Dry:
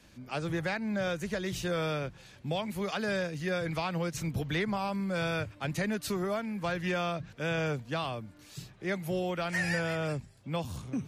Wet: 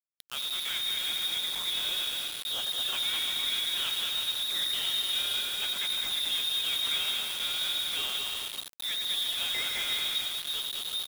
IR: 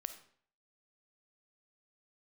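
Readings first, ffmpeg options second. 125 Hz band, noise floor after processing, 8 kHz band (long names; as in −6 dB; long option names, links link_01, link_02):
below −20 dB, −42 dBFS, +9.5 dB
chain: -filter_complex "[0:a]tiltshelf=frequency=680:gain=5.5,asplit=2[link_01][link_02];[link_02]alimiter=level_in=4dB:limit=-24dB:level=0:latency=1:release=125,volume=-4dB,volume=-2dB[link_03];[link_01][link_03]amix=inputs=2:normalize=0,highpass=150,asplit=2[link_04][link_05];[1:a]atrim=start_sample=2205,adelay=98[link_06];[link_05][link_06]afir=irnorm=-1:irlink=0,volume=-6dB[link_07];[link_04][link_07]amix=inputs=2:normalize=0,lowpass=frequency=3300:width_type=q:width=0.5098,lowpass=frequency=3300:width_type=q:width=0.6013,lowpass=frequency=3300:width_type=q:width=0.9,lowpass=frequency=3300:width_type=q:width=2.563,afreqshift=-3900,dynaudnorm=framelen=760:gausssize=5:maxgain=3dB,asoftclip=type=hard:threshold=-24.5dB,highshelf=frequency=2900:gain=-10,aecho=1:1:210|346.5|435.2|492.9|530.4:0.631|0.398|0.251|0.158|0.1,acrusher=bits=5:mix=0:aa=0.000001"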